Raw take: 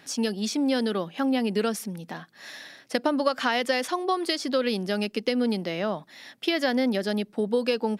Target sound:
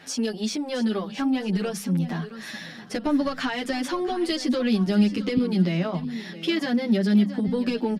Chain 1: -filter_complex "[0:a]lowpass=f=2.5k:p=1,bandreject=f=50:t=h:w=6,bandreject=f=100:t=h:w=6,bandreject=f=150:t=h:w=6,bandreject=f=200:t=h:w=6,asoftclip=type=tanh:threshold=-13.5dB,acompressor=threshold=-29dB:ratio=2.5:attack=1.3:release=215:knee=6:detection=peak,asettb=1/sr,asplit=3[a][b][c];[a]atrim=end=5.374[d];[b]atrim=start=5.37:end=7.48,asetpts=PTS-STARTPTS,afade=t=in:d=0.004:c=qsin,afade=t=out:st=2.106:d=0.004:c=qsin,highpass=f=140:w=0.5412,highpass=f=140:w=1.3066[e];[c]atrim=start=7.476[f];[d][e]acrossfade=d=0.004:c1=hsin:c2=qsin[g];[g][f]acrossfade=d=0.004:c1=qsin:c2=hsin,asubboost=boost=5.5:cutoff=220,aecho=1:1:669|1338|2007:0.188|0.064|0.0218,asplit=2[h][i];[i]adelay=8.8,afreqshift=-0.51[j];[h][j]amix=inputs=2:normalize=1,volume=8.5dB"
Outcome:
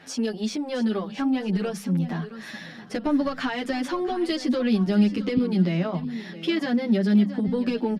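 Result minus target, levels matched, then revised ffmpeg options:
8000 Hz band -4.5 dB
-filter_complex "[0:a]lowpass=f=5.7k:p=1,bandreject=f=50:t=h:w=6,bandreject=f=100:t=h:w=6,bandreject=f=150:t=h:w=6,bandreject=f=200:t=h:w=6,asoftclip=type=tanh:threshold=-13.5dB,acompressor=threshold=-29dB:ratio=2.5:attack=1.3:release=215:knee=6:detection=peak,asettb=1/sr,asplit=3[a][b][c];[a]atrim=end=5.374[d];[b]atrim=start=5.37:end=7.48,asetpts=PTS-STARTPTS,afade=t=in:d=0.004:c=qsin,afade=t=out:st=2.106:d=0.004:c=qsin,highpass=f=140:w=0.5412,highpass=f=140:w=1.3066[e];[c]atrim=start=7.476[f];[d][e]acrossfade=d=0.004:c1=hsin:c2=qsin[g];[g][f]acrossfade=d=0.004:c1=qsin:c2=hsin,asubboost=boost=5.5:cutoff=220,aecho=1:1:669|1338|2007:0.188|0.064|0.0218,asplit=2[h][i];[i]adelay=8.8,afreqshift=-0.51[j];[h][j]amix=inputs=2:normalize=1,volume=8.5dB"

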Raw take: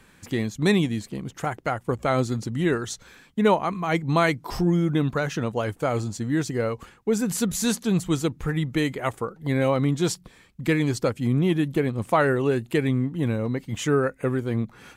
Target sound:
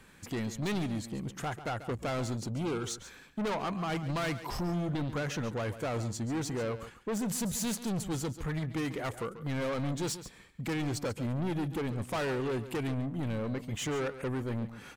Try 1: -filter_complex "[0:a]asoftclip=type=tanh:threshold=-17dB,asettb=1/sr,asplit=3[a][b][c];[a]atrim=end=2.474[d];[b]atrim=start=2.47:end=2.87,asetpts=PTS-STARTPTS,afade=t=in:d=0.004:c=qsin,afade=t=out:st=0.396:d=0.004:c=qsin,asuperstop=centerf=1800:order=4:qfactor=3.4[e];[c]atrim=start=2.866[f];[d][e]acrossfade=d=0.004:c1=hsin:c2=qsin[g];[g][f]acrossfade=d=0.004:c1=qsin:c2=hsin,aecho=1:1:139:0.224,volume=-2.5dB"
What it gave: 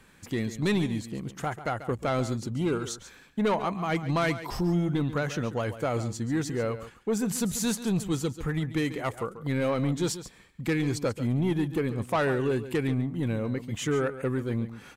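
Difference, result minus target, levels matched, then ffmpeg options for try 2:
soft clip: distortion -9 dB
-filter_complex "[0:a]asoftclip=type=tanh:threshold=-27.5dB,asettb=1/sr,asplit=3[a][b][c];[a]atrim=end=2.474[d];[b]atrim=start=2.47:end=2.87,asetpts=PTS-STARTPTS,afade=t=in:d=0.004:c=qsin,afade=t=out:st=0.396:d=0.004:c=qsin,asuperstop=centerf=1800:order=4:qfactor=3.4[e];[c]atrim=start=2.866[f];[d][e]acrossfade=d=0.004:c1=hsin:c2=qsin[g];[g][f]acrossfade=d=0.004:c1=qsin:c2=hsin,aecho=1:1:139:0.224,volume=-2.5dB"

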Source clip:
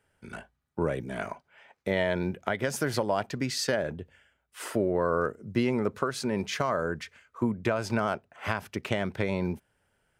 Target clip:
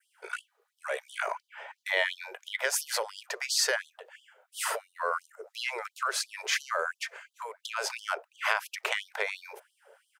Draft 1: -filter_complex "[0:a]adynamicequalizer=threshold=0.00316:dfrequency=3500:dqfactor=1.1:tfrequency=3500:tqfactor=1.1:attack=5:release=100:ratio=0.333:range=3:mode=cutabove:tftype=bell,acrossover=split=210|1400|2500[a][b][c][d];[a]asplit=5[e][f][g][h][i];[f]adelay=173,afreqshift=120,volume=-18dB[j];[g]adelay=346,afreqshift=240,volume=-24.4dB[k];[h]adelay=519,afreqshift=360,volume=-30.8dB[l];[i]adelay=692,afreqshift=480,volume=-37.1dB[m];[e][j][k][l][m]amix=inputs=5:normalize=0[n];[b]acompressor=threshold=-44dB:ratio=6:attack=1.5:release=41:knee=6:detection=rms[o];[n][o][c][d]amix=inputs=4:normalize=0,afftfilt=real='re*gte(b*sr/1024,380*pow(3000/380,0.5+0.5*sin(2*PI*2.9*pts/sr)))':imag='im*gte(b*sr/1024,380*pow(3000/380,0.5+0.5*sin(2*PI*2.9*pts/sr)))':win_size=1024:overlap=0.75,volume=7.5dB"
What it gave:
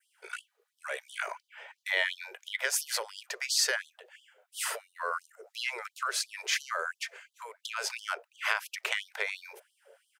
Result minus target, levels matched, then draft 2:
1000 Hz band -2.5 dB
-filter_complex "[0:a]adynamicequalizer=threshold=0.00316:dfrequency=3500:dqfactor=1.1:tfrequency=3500:tqfactor=1.1:attack=5:release=100:ratio=0.333:range=3:mode=cutabove:tftype=bell,acrossover=split=210|1400|2500[a][b][c][d];[a]asplit=5[e][f][g][h][i];[f]adelay=173,afreqshift=120,volume=-18dB[j];[g]adelay=346,afreqshift=240,volume=-24.4dB[k];[h]adelay=519,afreqshift=360,volume=-30.8dB[l];[i]adelay=692,afreqshift=480,volume=-37.1dB[m];[e][j][k][l][m]amix=inputs=5:normalize=0[n];[b]acompressor=threshold=-44dB:ratio=6:attack=1.5:release=41:knee=6:detection=rms,equalizer=f=1.1k:w=0.3:g=9[o];[n][o][c][d]amix=inputs=4:normalize=0,afftfilt=real='re*gte(b*sr/1024,380*pow(3000/380,0.5+0.5*sin(2*PI*2.9*pts/sr)))':imag='im*gte(b*sr/1024,380*pow(3000/380,0.5+0.5*sin(2*PI*2.9*pts/sr)))':win_size=1024:overlap=0.75,volume=7.5dB"

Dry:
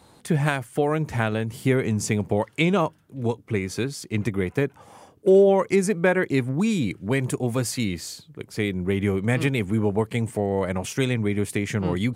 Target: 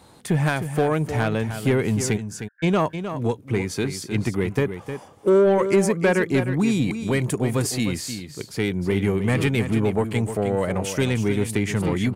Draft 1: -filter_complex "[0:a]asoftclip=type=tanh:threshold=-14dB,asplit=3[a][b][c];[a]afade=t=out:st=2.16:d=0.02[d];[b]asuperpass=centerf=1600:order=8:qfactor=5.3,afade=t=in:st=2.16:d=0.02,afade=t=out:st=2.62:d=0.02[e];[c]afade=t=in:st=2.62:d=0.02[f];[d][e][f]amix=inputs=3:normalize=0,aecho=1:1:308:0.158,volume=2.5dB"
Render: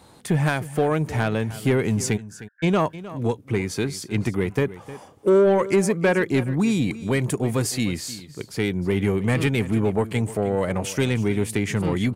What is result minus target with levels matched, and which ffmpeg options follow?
echo-to-direct -6.5 dB
-filter_complex "[0:a]asoftclip=type=tanh:threshold=-14dB,asplit=3[a][b][c];[a]afade=t=out:st=2.16:d=0.02[d];[b]asuperpass=centerf=1600:order=8:qfactor=5.3,afade=t=in:st=2.16:d=0.02,afade=t=out:st=2.62:d=0.02[e];[c]afade=t=in:st=2.62:d=0.02[f];[d][e][f]amix=inputs=3:normalize=0,aecho=1:1:308:0.335,volume=2.5dB"

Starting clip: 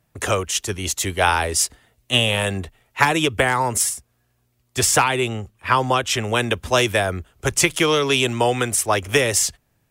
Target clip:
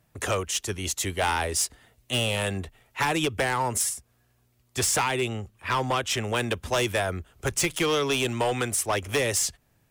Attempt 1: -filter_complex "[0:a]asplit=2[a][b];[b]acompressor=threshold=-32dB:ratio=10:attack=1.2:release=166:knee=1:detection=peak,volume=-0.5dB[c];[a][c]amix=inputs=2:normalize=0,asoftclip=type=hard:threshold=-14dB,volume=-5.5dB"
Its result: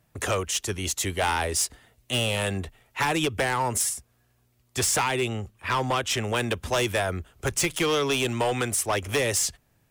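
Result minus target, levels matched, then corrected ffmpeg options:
compressor: peak gain reduction -11 dB
-filter_complex "[0:a]asplit=2[a][b];[b]acompressor=threshold=-44dB:ratio=10:attack=1.2:release=166:knee=1:detection=peak,volume=-0.5dB[c];[a][c]amix=inputs=2:normalize=0,asoftclip=type=hard:threshold=-14dB,volume=-5.5dB"

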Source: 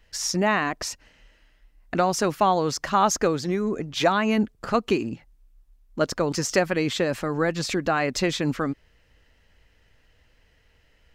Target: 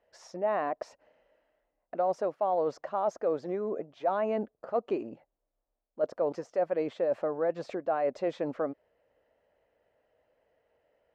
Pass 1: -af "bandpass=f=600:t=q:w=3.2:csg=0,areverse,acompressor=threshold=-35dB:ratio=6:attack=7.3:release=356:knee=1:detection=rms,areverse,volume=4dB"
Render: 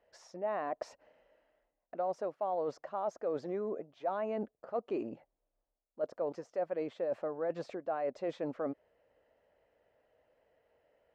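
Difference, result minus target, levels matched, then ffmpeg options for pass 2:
compressor: peak gain reduction +6 dB
-af "bandpass=f=600:t=q:w=3.2:csg=0,areverse,acompressor=threshold=-27.5dB:ratio=6:attack=7.3:release=356:knee=1:detection=rms,areverse,volume=4dB"

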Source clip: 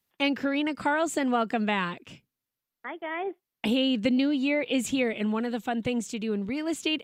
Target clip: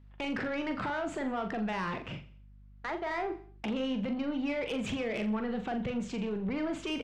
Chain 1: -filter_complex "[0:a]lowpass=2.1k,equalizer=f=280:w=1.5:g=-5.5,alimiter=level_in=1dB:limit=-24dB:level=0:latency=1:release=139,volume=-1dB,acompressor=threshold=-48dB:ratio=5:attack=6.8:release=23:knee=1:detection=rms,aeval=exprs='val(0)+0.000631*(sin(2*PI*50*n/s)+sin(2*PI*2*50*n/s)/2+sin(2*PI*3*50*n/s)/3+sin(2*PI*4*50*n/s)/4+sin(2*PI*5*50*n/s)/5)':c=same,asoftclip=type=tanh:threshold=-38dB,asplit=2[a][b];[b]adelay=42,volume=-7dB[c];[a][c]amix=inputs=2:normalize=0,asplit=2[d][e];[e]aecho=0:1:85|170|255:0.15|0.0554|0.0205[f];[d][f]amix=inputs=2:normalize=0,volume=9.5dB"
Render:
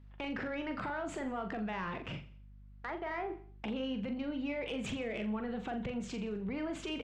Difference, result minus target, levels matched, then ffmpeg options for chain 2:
compressor: peak gain reduction +6 dB
-filter_complex "[0:a]lowpass=2.1k,equalizer=f=280:w=1.5:g=-5.5,alimiter=level_in=1dB:limit=-24dB:level=0:latency=1:release=139,volume=-1dB,acompressor=threshold=-40.5dB:ratio=5:attack=6.8:release=23:knee=1:detection=rms,aeval=exprs='val(0)+0.000631*(sin(2*PI*50*n/s)+sin(2*PI*2*50*n/s)/2+sin(2*PI*3*50*n/s)/3+sin(2*PI*4*50*n/s)/4+sin(2*PI*5*50*n/s)/5)':c=same,asoftclip=type=tanh:threshold=-38dB,asplit=2[a][b];[b]adelay=42,volume=-7dB[c];[a][c]amix=inputs=2:normalize=0,asplit=2[d][e];[e]aecho=0:1:85|170|255:0.15|0.0554|0.0205[f];[d][f]amix=inputs=2:normalize=0,volume=9.5dB"

